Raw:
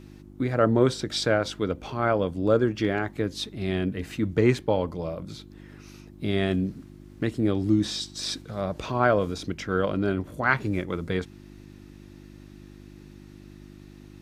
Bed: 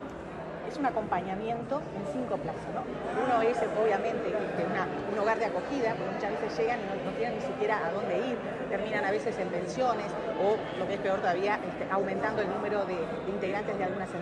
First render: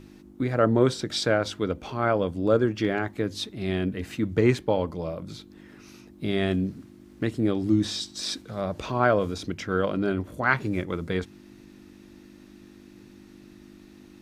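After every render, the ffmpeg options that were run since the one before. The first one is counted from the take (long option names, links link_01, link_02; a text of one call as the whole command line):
ffmpeg -i in.wav -af "bandreject=frequency=50:width_type=h:width=4,bandreject=frequency=100:width_type=h:width=4,bandreject=frequency=150:width_type=h:width=4" out.wav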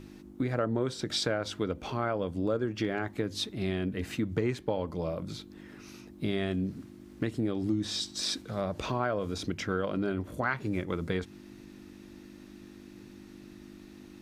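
ffmpeg -i in.wav -af "acompressor=threshold=-27dB:ratio=4" out.wav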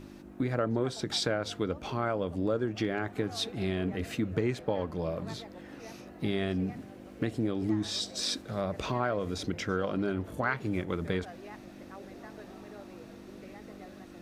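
ffmpeg -i in.wav -i bed.wav -filter_complex "[1:a]volume=-19dB[link_01];[0:a][link_01]amix=inputs=2:normalize=0" out.wav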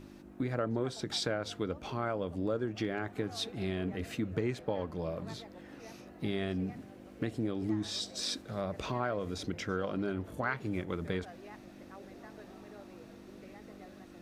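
ffmpeg -i in.wav -af "volume=-3.5dB" out.wav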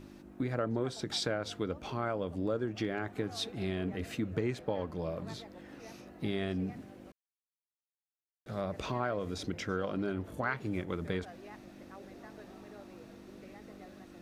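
ffmpeg -i in.wav -filter_complex "[0:a]asplit=3[link_01][link_02][link_03];[link_01]atrim=end=7.12,asetpts=PTS-STARTPTS,afade=type=out:start_time=7.116:duration=0.004:curve=hsin[link_04];[link_02]atrim=start=7.12:end=8.46,asetpts=PTS-STARTPTS,volume=0[link_05];[link_03]atrim=start=8.46,asetpts=PTS-STARTPTS,afade=type=in:duration=0.004:curve=hsin[link_06];[link_04][link_05][link_06]concat=n=3:v=0:a=1" out.wav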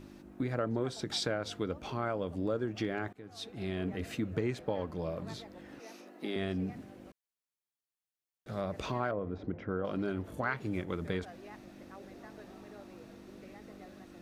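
ffmpeg -i in.wav -filter_complex "[0:a]asettb=1/sr,asplit=3[link_01][link_02][link_03];[link_01]atrim=end=5.794[link_04];[link_02]atrim=start=5.79:end=6.36,asetpts=PTS-STARTPTS,afade=type=in:duration=0.004:curve=qsin,afade=type=out:start_time=0.566:duration=0.004:curve=qsin,highpass=frequency=240:width=0.5412,highpass=frequency=240:width=1.3066[link_05];[link_03]atrim=start=6.356[link_06];[link_04][link_05]acrossfade=duration=0.004:curve1=hsin:curve2=qsin[link_07];[link_07][link_06]acrossfade=duration=0.004:curve1=qsin:curve2=hsin,asettb=1/sr,asplit=3[link_08][link_09][link_10];[link_08]atrim=end=9.114[link_11];[link_09]atrim=start=9.11:end=9.85,asetpts=PTS-STARTPTS,afade=type=in:duration=0.004:curve=qsin,afade=type=out:start_time=0.736:duration=0.004:curve=qsin,lowpass=1200[link_12];[link_10]atrim=start=9.846[link_13];[link_11][link_12]acrossfade=duration=0.004:curve1=hsin:curve2=qsin[link_14];[link_14][link_13]acrossfade=duration=0.004:curve1=qsin:curve2=hsin,asplit=2[link_15][link_16];[link_15]atrim=end=3.13,asetpts=PTS-STARTPTS,afade=type=out:start_time=3.126:duration=0.004:curve=hsin:silence=0.0749894[link_17];[link_16]atrim=start=3.13,asetpts=PTS-STARTPTS,afade=type=in:duration=0.69:silence=0.0749894[link_18];[link_17][link_18]concat=n=2:v=0:a=1" out.wav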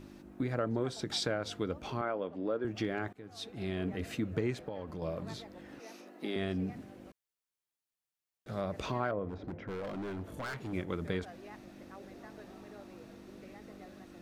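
ffmpeg -i in.wav -filter_complex "[0:a]asettb=1/sr,asplit=3[link_01][link_02][link_03];[link_01]atrim=end=2.014[link_04];[link_02]atrim=start=2.01:end=2.65,asetpts=PTS-STARTPTS,afade=type=in:duration=0.004:curve=qsin,afade=type=out:start_time=0.636:duration=0.004:curve=qsin,highpass=250,lowpass=3000[link_05];[link_03]atrim=start=2.646[link_06];[link_04][link_05]acrossfade=duration=0.004:curve1=hsin:curve2=qsin[link_07];[link_07][link_06]acrossfade=duration=0.004:curve1=qsin:curve2=hsin,asettb=1/sr,asplit=3[link_08][link_09][link_10];[link_08]atrim=end=4.564[link_11];[link_09]atrim=start=4.56:end=5.02,asetpts=PTS-STARTPTS,afade=type=in:duration=0.004:curve=qsin,afade=type=out:start_time=0.456:duration=0.004:curve=qsin,acompressor=threshold=-36dB:ratio=4:attack=3.2:release=140:knee=1:detection=peak[link_12];[link_10]atrim=start=5.016[link_13];[link_11][link_12]acrossfade=duration=0.004:curve1=hsin:curve2=qsin[link_14];[link_14][link_13]acrossfade=duration=0.004:curve1=qsin:curve2=hsin,asettb=1/sr,asplit=3[link_15][link_16][link_17];[link_15]atrim=end=9.294[link_18];[link_16]atrim=start=9.29:end=10.73,asetpts=PTS-STARTPTS,afade=type=in:duration=0.004:curve=qsin,afade=type=out:start_time=1.436:duration=0.004:curve=qsin,volume=36dB,asoftclip=hard,volume=-36dB[link_19];[link_17]atrim=start=10.726[link_20];[link_18][link_19]acrossfade=duration=0.004:curve1=hsin:curve2=qsin[link_21];[link_21][link_20]acrossfade=duration=0.004:curve1=qsin:curve2=hsin" out.wav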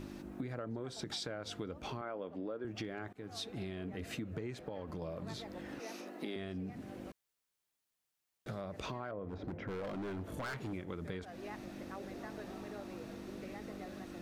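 ffmpeg -i in.wav -filter_complex "[0:a]asplit=2[link_01][link_02];[link_02]alimiter=level_in=5dB:limit=-24dB:level=0:latency=1,volume=-5dB,volume=-1.5dB[link_03];[link_01][link_03]amix=inputs=2:normalize=0,acompressor=threshold=-40dB:ratio=4" out.wav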